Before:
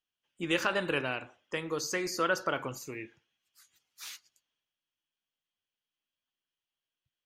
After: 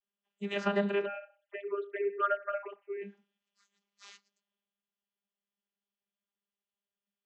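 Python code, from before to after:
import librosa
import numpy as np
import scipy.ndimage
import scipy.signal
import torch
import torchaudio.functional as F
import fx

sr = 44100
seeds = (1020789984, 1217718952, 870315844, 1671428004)

y = fx.sine_speech(x, sr, at=(1.05, 3.01))
y = fx.vocoder(y, sr, bands=32, carrier='saw', carrier_hz=201.0)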